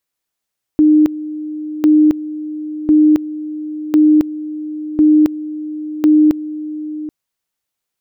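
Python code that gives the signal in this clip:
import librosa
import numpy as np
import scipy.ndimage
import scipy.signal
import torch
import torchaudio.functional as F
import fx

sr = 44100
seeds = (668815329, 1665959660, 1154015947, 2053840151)

y = fx.two_level_tone(sr, hz=305.0, level_db=-6.0, drop_db=15.5, high_s=0.27, low_s=0.78, rounds=6)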